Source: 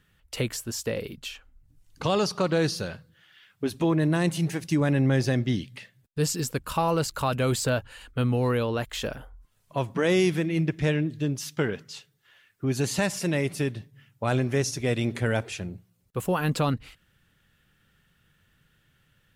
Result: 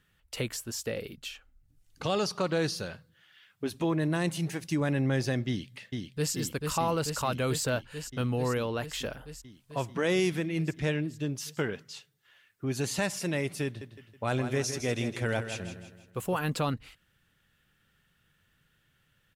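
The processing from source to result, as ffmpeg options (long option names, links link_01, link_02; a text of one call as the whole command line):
ffmpeg -i in.wav -filter_complex "[0:a]asettb=1/sr,asplit=3[link_01][link_02][link_03];[link_01]atrim=end=0.824[link_04];[link_02]atrim=start=0.82:end=2.25,asetpts=PTS-STARTPTS,afade=type=in:duration=0.004:curve=qsin,afade=type=out:start_time=1.426:duration=0.004:curve=qsin,bandreject=frequency=1000:width=7[link_05];[link_03]atrim=start=2.246[link_06];[link_04][link_05]acrossfade=duration=0.004:curve1=hsin:curve2=qsin[link_07];[link_07][link_06]acrossfade=duration=0.004:curve1=qsin:curve2=hsin,asplit=2[link_08][link_09];[link_09]afade=type=in:start_time=5.48:duration=0.01,afade=type=out:start_time=6.33:duration=0.01,aecho=0:1:440|880|1320|1760|2200|2640|3080|3520|3960|4400|4840|5280:0.630957|0.504766|0.403813|0.32305|0.25844|0.206752|0.165402|0.132321|0.105857|0.0846857|0.0677485|0.0541988[link_10];[link_08][link_10]amix=inputs=2:normalize=0,asettb=1/sr,asplit=3[link_11][link_12][link_13];[link_11]atrim=end=13.654[link_14];[link_12]atrim=start=13.65:end=16.39,asetpts=PTS-STARTPTS,afade=type=in:duration=0.004:curve=qsin,afade=type=out:start_time=2.736:duration=0.004:curve=qsin,aecho=1:1:161|322|483|644|805:0.335|0.144|0.0619|0.0266|0.0115,atrim=end_sample=120834[link_15];[link_13]atrim=start=16.386[link_16];[link_14][link_15]acrossfade=duration=0.004:curve1=hsin:curve2=qsin[link_17];[link_17][link_16]acrossfade=duration=0.004:curve1=qsin:curve2=hsin,lowshelf=frequency=440:gain=-3,volume=-3dB" out.wav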